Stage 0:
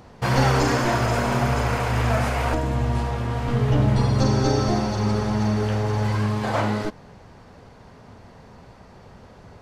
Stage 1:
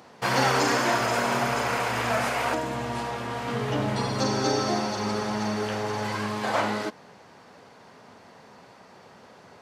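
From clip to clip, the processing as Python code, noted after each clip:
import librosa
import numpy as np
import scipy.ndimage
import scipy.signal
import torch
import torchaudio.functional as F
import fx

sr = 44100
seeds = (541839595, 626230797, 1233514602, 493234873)

y = scipy.signal.sosfilt(scipy.signal.butter(2, 190.0, 'highpass', fs=sr, output='sos'), x)
y = fx.tilt_shelf(y, sr, db=-3.0, hz=650.0)
y = y * librosa.db_to_amplitude(-1.5)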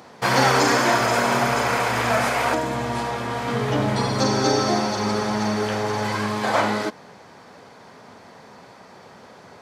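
y = fx.notch(x, sr, hz=2800.0, q=17.0)
y = y * librosa.db_to_amplitude(5.0)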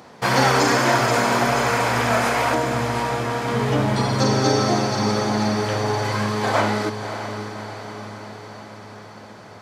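y = fx.low_shelf(x, sr, hz=210.0, db=3.0)
y = fx.echo_diffused(y, sr, ms=592, feedback_pct=61, wet_db=-9.5)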